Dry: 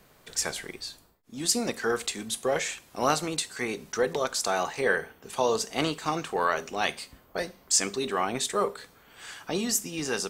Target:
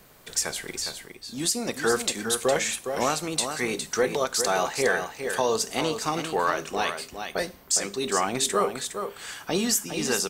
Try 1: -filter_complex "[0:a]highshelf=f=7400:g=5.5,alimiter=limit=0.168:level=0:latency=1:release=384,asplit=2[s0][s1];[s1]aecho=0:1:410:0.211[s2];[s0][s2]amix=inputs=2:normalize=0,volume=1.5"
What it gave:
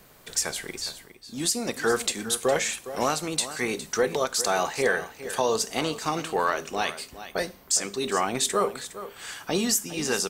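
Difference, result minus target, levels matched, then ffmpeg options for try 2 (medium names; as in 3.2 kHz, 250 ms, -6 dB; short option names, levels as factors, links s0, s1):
echo-to-direct -6 dB
-filter_complex "[0:a]highshelf=f=7400:g=5.5,alimiter=limit=0.168:level=0:latency=1:release=384,asplit=2[s0][s1];[s1]aecho=0:1:410:0.422[s2];[s0][s2]amix=inputs=2:normalize=0,volume=1.5"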